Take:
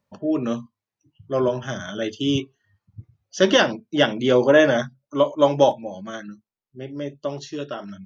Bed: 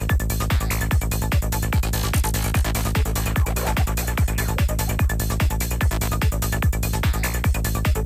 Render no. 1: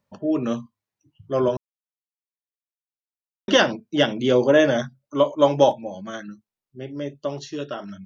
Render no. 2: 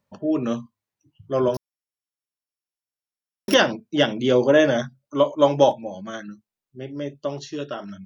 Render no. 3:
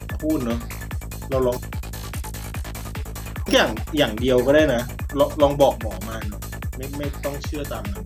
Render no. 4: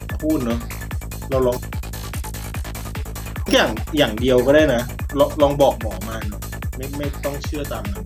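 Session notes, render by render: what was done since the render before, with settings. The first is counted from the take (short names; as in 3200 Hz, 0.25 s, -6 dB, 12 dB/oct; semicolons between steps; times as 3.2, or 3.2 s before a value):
1.57–3.48 mute; 4.01–4.84 bell 1300 Hz -4 dB 1.8 oct
1.54–3.54 sample sorter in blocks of 8 samples
add bed -9.5 dB
gain +2.5 dB; limiter -3 dBFS, peak gain reduction 2 dB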